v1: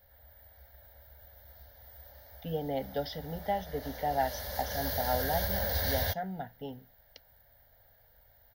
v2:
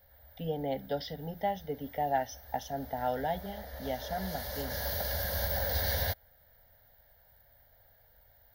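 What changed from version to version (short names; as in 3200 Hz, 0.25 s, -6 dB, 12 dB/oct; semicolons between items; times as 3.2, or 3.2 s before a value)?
speech: entry -2.05 s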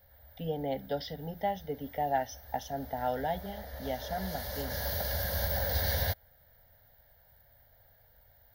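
background: add bell 120 Hz +3.5 dB 1.4 oct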